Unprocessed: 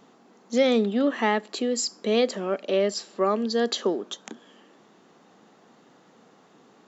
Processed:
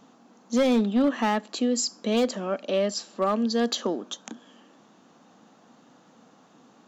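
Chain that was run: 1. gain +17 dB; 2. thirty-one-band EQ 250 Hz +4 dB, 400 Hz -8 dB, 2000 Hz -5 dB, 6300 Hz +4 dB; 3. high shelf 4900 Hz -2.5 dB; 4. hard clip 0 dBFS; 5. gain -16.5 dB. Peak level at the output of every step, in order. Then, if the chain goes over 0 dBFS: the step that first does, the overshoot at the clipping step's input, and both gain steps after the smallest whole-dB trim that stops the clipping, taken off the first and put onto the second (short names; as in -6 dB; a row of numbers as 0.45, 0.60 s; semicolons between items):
+6.5, +6.5, +6.5, 0.0, -16.5 dBFS; step 1, 6.5 dB; step 1 +10 dB, step 5 -9.5 dB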